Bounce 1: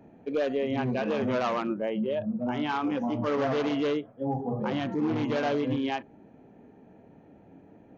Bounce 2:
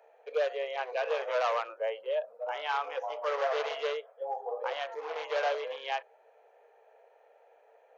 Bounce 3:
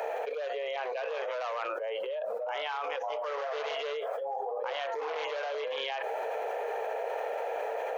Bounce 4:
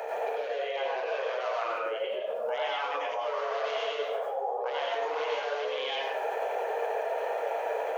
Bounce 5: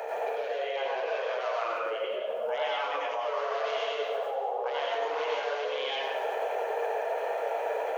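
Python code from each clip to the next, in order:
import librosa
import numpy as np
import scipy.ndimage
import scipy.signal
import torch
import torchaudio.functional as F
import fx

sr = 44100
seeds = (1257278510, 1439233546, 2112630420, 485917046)

y1 = scipy.signal.sosfilt(scipy.signal.cheby1(6, 1.0, 460.0, 'highpass', fs=sr, output='sos'), x)
y2 = fx.env_flatten(y1, sr, amount_pct=100)
y2 = y2 * librosa.db_to_amplitude(-8.5)
y3 = fx.rev_plate(y2, sr, seeds[0], rt60_s=0.66, hf_ratio=0.8, predelay_ms=80, drr_db=-3.0)
y3 = y3 * librosa.db_to_amplitude(-2.0)
y4 = fx.echo_feedback(y3, sr, ms=181, feedback_pct=46, wet_db=-11.5)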